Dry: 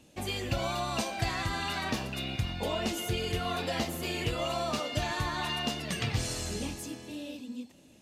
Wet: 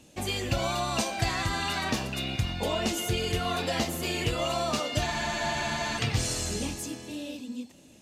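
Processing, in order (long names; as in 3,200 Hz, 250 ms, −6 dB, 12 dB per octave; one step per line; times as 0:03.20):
parametric band 7,100 Hz +3.5 dB 0.91 octaves
frozen spectrum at 0:05.09, 0.90 s
level +3 dB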